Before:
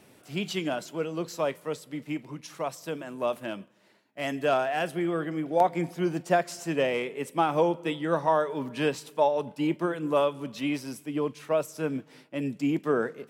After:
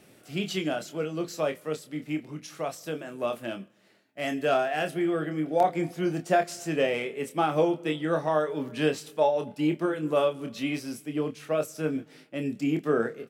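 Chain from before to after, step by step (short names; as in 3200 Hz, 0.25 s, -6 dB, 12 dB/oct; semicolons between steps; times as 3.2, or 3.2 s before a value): bell 970 Hz -10.5 dB 0.22 oct; doubler 26 ms -7 dB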